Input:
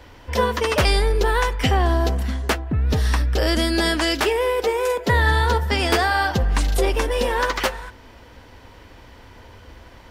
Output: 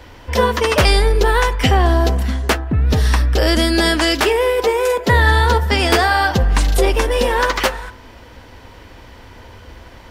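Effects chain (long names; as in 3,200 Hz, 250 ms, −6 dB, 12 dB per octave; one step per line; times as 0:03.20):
hum removal 143.4 Hz, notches 13
level +5 dB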